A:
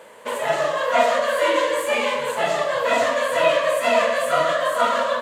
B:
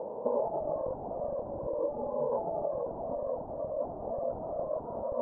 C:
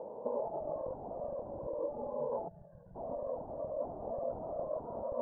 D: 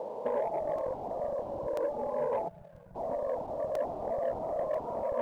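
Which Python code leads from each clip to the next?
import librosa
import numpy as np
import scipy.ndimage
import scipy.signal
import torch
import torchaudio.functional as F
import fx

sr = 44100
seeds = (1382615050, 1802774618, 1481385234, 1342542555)

y1 = (np.mod(10.0 ** (13.5 / 20.0) * x + 1.0, 2.0) - 1.0) / 10.0 ** (13.5 / 20.0)
y1 = fx.over_compress(y1, sr, threshold_db=-31.0, ratio=-1.0)
y1 = scipy.signal.sosfilt(scipy.signal.ellip(4, 1.0, 60, 830.0, 'lowpass', fs=sr, output='sos'), y1)
y2 = fx.rider(y1, sr, range_db=10, speed_s=2.0)
y2 = fx.spec_box(y2, sr, start_s=2.48, length_s=0.47, low_hz=210.0, high_hz=1400.0, gain_db=-22)
y2 = F.gain(torch.from_numpy(y2), -5.0).numpy()
y3 = fx.tilt_shelf(y2, sr, db=-4.5, hz=630.0)
y3 = fx.leveller(y3, sr, passes=1)
y3 = fx.buffer_crackle(y3, sr, first_s=0.78, period_s=0.99, block=128, kind='repeat')
y3 = F.gain(torch.from_numpy(y3), 3.0).numpy()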